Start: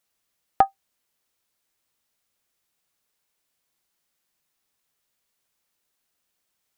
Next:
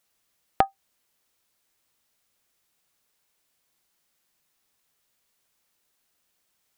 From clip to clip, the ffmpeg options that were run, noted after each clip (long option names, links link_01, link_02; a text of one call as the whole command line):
ffmpeg -i in.wav -af "acompressor=threshold=-21dB:ratio=6,volume=3.5dB" out.wav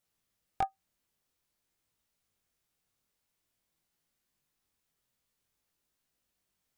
ffmpeg -i in.wav -af "lowshelf=frequency=260:gain=10.5,flanger=delay=18:depth=5.5:speed=0.5,asoftclip=type=hard:threshold=-16dB,volume=-6dB" out.wav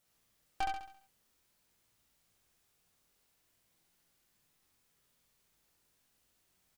ffmpeg -i in.wav -filter_complex "[0:a]asplit=2[link_01][link_02];[link_02]alimiter=level_in=8.5dB:limit=-24dB:level=0:latency=1:release=146,volume=-8.5dB,volume=-1.5dB[link_03];[link_01][link_03]amix=inputs=2:normalize=0,aeval=exprs='(tanh(63.1*val(0)+0.8)-tanh(0.8))/63.1':channel_layout=same,aecho=1:1:68|136|204|272|340|408:0.708|0.311|0.137|0.0603|0.0265|0.0117,volume=5dB" out.wav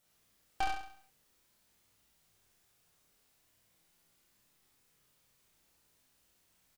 ffmpeg -i in.wav -filter_complex "[0:a]asplit=2[link_01][link_02];[link_02]adelay=30,volume=-4dB[link_03];[link_01][link_03]amix=inputs=2:normalize=0,volume=1.5dB" out.wav